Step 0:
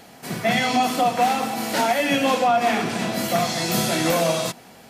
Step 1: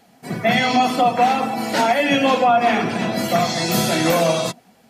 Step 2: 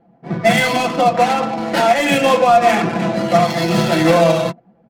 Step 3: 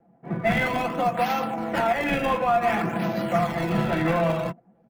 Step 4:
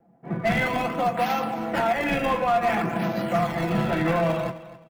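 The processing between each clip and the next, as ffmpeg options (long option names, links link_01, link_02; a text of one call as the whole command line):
ffmpeg -i in.wav -af "afftdn=noise_reduction=13:noise_floor=-34,volume=3.5dB" out.wav
ffmpeg -i in.wav -af "adynamicsmooth=sensitivity=2.5:basefreq=720,aecho=1:1:5.9:0.62,volume=2dB" out.wav
ffmpeg -i in.wav -filter_complex "[0:a]acrossover=split=260|740|2900[link_01][link_02][link_03][link_04];[link_02]acompressor=threshold=-24dB:ratio=6[link_05];[link_04]acrusher=samples=23:mix=1:aa=0.000001:lfo=1:lforange=36.8:lforate=0.56[link_06];[link_01][link_05][link_03][link_06]amix=inputs=4:normalize=0,volume=-6.5dB" out.wav
ffmpeg -i in.wav -af "asoftclip=type=hard:threshold=-16dB,aecho=1:1:260|520:0.158|0.0396" out.wav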